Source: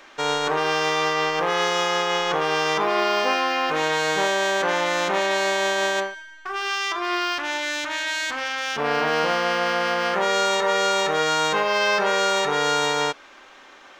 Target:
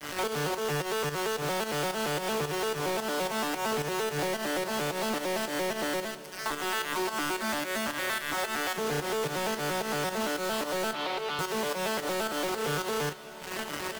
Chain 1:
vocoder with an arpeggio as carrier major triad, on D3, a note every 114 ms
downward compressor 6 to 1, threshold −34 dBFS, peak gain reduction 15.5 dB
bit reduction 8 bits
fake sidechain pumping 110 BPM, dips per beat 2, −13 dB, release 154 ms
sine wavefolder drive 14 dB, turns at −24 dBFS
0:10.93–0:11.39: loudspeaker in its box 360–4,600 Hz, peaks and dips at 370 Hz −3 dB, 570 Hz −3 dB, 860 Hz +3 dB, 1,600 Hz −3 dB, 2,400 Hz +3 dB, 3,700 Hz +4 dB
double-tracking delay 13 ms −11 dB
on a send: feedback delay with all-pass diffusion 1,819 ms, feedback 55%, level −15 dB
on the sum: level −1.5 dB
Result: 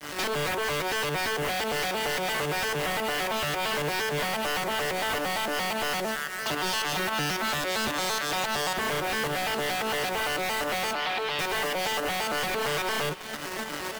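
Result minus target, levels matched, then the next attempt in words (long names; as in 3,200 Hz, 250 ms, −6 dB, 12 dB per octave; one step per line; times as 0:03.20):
downward compressor: peak gain reduction −9.5 dB
vocoder with an arpeggio as carrier major triad, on D3, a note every 114 ms
downward compressor 6 to 1, threshold −45.5 dBFS, peak gain reduction 25 dB
bit reduction 8 bits
fake sidechain pumping 110 BPM, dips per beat 2, −13 dB, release 154 ms
sine wavefolder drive 14 dB, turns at −24 dBFS
0:10.93–0:11.39: loudspeaker in its box 360–4,600 Hz, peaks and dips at 370 Hz −3 dB, 570 Hz −3 dB, 860 Hz +3 dB, 1,600 Hz −3 dB, 2,400 Hz +3 dB, 3,700 Hz +4 dB
double-tracking delay 13 ms −11 dB
on a send: feedback delay with all-pass diffusion 1,819 ms, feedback 55%, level −15 dB
on the sum: level −1.5 dB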